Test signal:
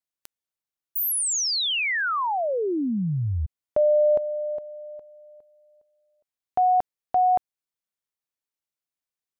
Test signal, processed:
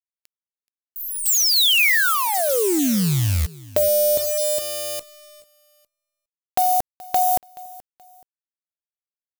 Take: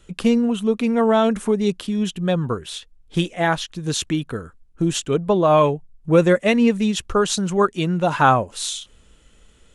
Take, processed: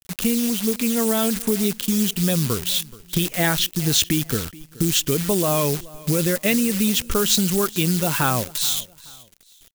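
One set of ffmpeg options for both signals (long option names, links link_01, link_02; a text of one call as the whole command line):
ffmpeg -i in.wav -af "aemphasis=mode=reproduction:type=cd,agate=range=-11dB:threshold=-47dB:ratio=16:release=55:detection=peak,lowpass=frequency=2500:poles=1,equalizer=frequency=900:width=0.77:gain=-10,dynaudnorm=framelen=210:gausssize=17:maxgain=11dB,alimiter=limit=-10dB:level=0:latency=1:release=45,acompressor=threshold=-18dB:ratio=16:attack=44:release=334:knee=6:detection=rms,acrusher=bits=7:dc=4:mix=0:aa=0.000001,crystalizer=i=6:c=0,aecho=1:1:427|854:0.0891|0.0285" out.wav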